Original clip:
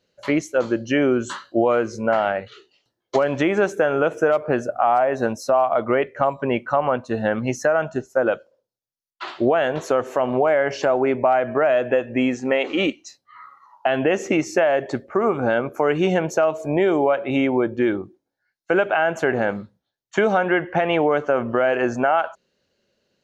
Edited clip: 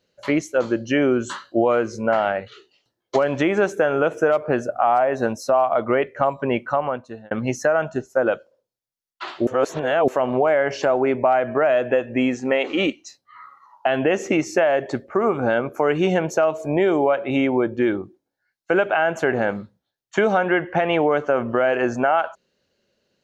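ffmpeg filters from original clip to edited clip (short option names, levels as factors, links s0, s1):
-filter_complex "[0:a]asplit=4[s0][s1][s2][s3];[s0]atrim=end=7.31,asetpts=PTS-STARTPTS,afade=t=out:st=6.66:d=0.65[s4];[s1]atrim=start=7.31:end=9.472,asetpts=PTS-STARTPTS,afade=t=in:d=0.004:c=hsin[s5];[s2]atrim=start=9.468:end=10.082,asetpts=PTS-STARTPTS,areverse[s6];[s3]atrim=start=10.078[s7];[s4][s5]concat=n=2:v=0:a=1[s8];[s8][s6]acrossfade=d=0.004:c1=hsin:c2=hsin[s9];[s9][s7]acrossfade=d=0.004:c1=hsin:c2=hsin"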